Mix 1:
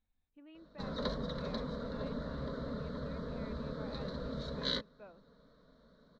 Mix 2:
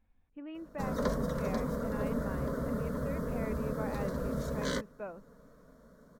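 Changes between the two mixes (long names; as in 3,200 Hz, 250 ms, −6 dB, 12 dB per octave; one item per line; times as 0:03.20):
background −6.5 dB
master: remove transistor ladder low-pass 4,200 Hz, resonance 80%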